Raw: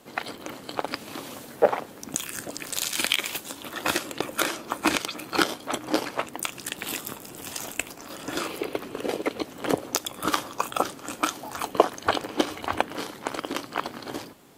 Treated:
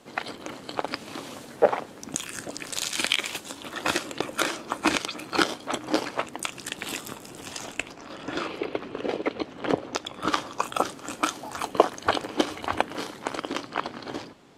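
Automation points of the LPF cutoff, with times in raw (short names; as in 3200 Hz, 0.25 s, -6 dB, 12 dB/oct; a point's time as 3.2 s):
7.31 s 8900 Hz
8.14 s 4000 Hz
10.05 s 4000 Hz
10.75 s 10000 Hz
13.22 s 10000 Hz
13.75 s 5800 Hz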